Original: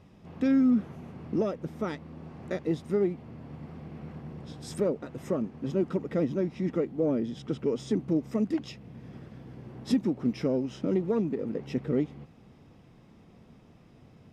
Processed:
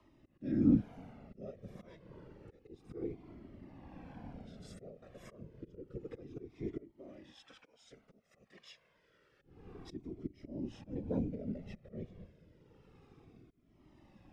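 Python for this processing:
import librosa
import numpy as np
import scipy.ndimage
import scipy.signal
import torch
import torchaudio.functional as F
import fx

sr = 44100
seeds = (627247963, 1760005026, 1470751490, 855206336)

y = fx.highpass(x, sr, hz=fx.steps((0.0, 230.0), (6.91, 1000.0), (9.41, 160.0)), slope=12)
y = fx.dynamic_eq(y, sr, hz=1100.0, q=0.77, threshold_db=-47.0, ratio=4.0, max_db=-7)
y = fx.hpss(y, sr, part='percussive', gain_db=-9)
y = fx.high_shelf(y, sr, hz=5100.0, db=-6.5)
y = fx.auto_swell(y, sr, attack_ms=352.0)
y = fx.whisperise(y, sr, seeds[0])
y = fx.rotary(y, sr, hz=0.9)
y = fx.comb_cascade(y, sr, direction='falling', hz=0.29)
y = F.gain(torch.from_numpy(y), 4.5).numpy()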